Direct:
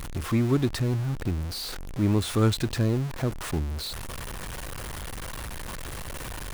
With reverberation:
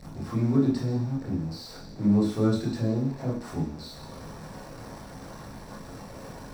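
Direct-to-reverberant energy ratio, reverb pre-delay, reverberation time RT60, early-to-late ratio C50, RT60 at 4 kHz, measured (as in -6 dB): -7.0 dB, 18 ms, 0.50 s, 3.5 dB, 0.85 s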